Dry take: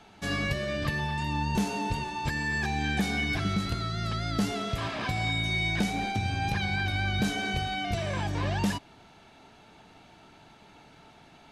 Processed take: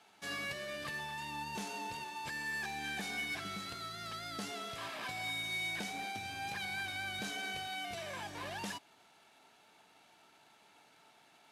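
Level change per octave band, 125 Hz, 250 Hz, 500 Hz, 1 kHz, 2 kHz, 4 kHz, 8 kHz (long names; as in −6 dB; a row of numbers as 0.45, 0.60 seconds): −22.0, −17.5, −11.5, −9.0, −7.5, −7.0, −5.0 decibels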